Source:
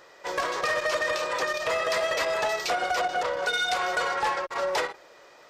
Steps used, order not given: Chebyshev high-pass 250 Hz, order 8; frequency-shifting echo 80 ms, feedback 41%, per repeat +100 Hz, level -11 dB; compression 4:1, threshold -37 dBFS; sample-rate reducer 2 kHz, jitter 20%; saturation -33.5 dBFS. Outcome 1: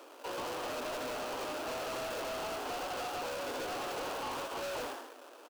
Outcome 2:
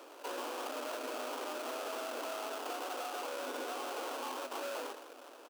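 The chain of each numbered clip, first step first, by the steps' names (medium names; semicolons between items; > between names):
sample-rate reducer > frequency-shifting echo > Chebyshev high-pass > saturation > compression; saturation > frequency-shifting echo > sample-rate reducer > Chebyshev high-pass > compression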